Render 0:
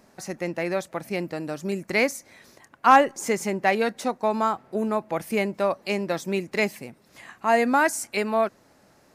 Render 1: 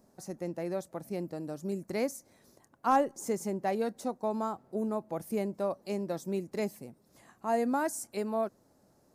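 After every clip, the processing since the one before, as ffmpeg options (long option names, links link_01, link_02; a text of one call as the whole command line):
ffmpeg -i in.wav -af "equalizer=frequency=2300:width=0.67:gain=-14.5,volume=-5.5dB" out.wav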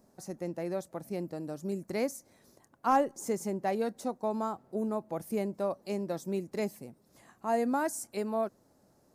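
ffmpeg -i in.wav -af "asoftclip=type=hard:threshold=-16.5dB" out.wav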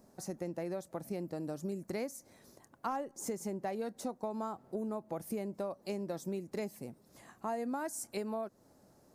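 ffmpeg -i in.wav -af "acompressor=threshold=-37dB:ratio=5,volume=2dB" out.wav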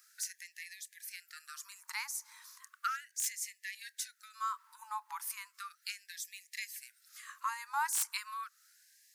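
ffmpeg -i in.wav -filter_complex "[0:a]acrossover=split=780|1800[link_01][link_02][link_03];[link_03]aeval=exprs='(mod(47.3*val(0)+1,2)-1)/47.3':channel_layout=same[link_04];[link_01][link_02][link_04]amix=inputs=3:normalize=0,afftfilt=real='re*gte(b*sr/1024,830*pow(1700/830,0.5+0.5*sin(2*PI*0.35*pts/sr)))':imag='im*gte(b*sr/1024,830*pow(1700/830,0.5+0.5*sin(2*PI*0.35*pts/sr)))':win_size=1024:overlap=0.75,volume=9.5dB" out.wav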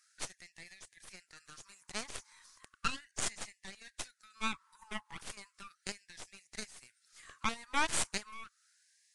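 ffmpeg -i in.wav -af "aeval=exprs='0.0794*(cos(1*acos(clip(val(0)/0.0794,-1,1)))-cos(1*PI/2))+0.00501*(cos(3*acos(clip(val(0)/0.0794,-1,1)))-cos(3*PI/2))+0.0282*(cos(4*acos(clip(val(0)/0.0794,-1,1)))-cos(4*PI/2))+0.0158*(cos(7*acos(clip(val(0)/0.0794,-1,1)))-cos(7*PI/2))':channel_layout=same" -ar 22050 -c:a libvorbis -b:a 48k out.ogg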